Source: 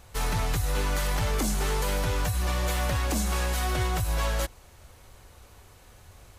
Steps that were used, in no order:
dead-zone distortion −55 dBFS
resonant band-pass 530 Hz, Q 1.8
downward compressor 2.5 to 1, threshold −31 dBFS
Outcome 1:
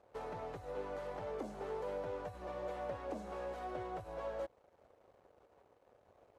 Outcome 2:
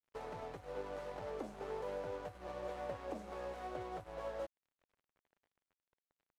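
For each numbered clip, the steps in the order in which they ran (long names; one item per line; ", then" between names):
dead-zone distortion, then downward compressor, then resonant band-pass
downward compressor, then resonant band-pass, then dead-zone distortion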